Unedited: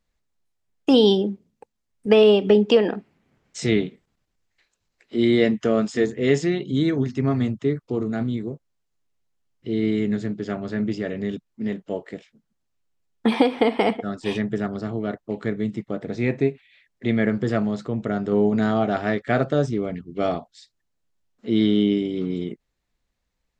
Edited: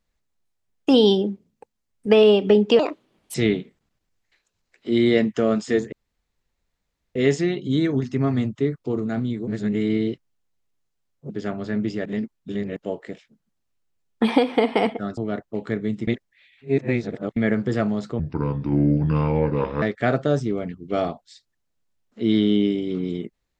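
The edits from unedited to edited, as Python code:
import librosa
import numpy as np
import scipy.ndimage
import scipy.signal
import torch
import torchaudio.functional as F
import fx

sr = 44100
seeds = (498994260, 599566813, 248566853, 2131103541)

y = fx.edit(x, sr, fx.speed_span(start_s=2.79, length_s=0.82, speed=1.48),
    fx.insert_room_tone(at_s=6.19, length_s=1.23),
    fx.reverse_span(start_s=8.51, length_s=1.82),
    fx.reverse_span(start_s=11.09, length_s=0.71),
    fx.cut(start_s=14.21, length_s=0.72),
    fx.reverse_span(start_s=15.83, length_s=1.29),
    fx.speed_span(start_s=17.95, length_s=1.14, speed=0.7), tone=tone)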